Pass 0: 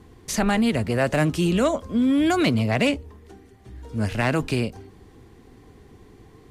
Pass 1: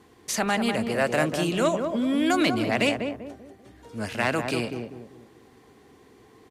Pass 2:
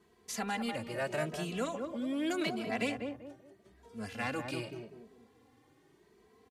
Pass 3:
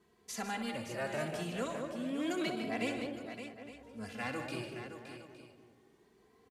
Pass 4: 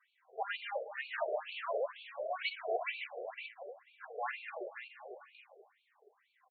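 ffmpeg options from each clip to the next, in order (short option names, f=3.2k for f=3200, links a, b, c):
-filter_complex "[0:a]highpass=f=430:p=1,asplit=2[a][b];[b]adelay=195,lowpass=f=900:p=1,volume=-4dB,asplit=2[c][d];[d]adelay=195,lowpass=f=900:p=1,volume=0.4,asplit=2[e][f];[f]adelay=195,lowpass=f=900:p=1,volume=0.4,asplit=2[g][h];[h]adelay=195,lowpass=f=900:p=1,volume=0.4,asplit=2[i][j];[j]adelay=195,lowpass=f=900:p=1,volume=0.4[k];[c][e][g][i][k]amix=inputs=5:normalize=0[l];[a][l]amix=inputs=2:normalize=0"
-filter_complex "[0:a]asplit=2[a][b];[b]adelay=2.7,afreqshift=0.82[c];[a][c]amix=inputs=2:normalize=1,volume=-8dB"
-af "aecho=1:1:63|151|568|863:0.299|0.299|0.335|0.158,volume=-3dB"
-af "bass=f=250:g=13,treble=f=4k:g=-7,afftfilt=real='re*between(b*sr/1024,520*pow(3200/520,0.5+0.5*sin(2*PI*2.1*pts/sr))/1.41,520*pow(3200/520,0.5+0.5*sin(2*PI*2.1*pts/sr))*1.41)':imag='im*between(b*sr/1024,520*pow(3200/520,0.5+0.5*sin(2*PI*2.1*pts/sr))/1.41,520*pow(3200/520,0.5+0.5*sin(2*PI*2.1*pts/sr))*1.41)':win_size=1024:overlap=0.75,volume=6.5dB"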